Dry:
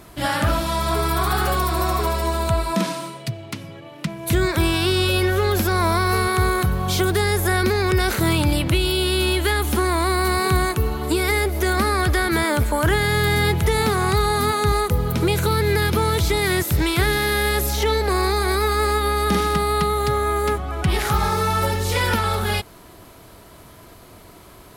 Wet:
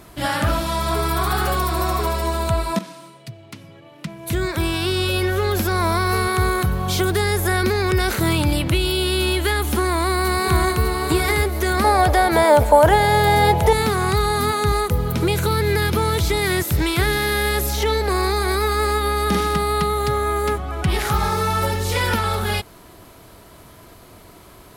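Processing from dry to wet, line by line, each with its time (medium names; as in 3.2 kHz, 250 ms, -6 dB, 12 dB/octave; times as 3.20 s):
2.79–6.69 s: fade in equal-power, from -13.5 dB
9.87–10.83 s: echo throw 600 ms, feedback 25%, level -5 dB
11.84–13.73 s: high-order bell 670 Hz +12.5 dB 1.2 oct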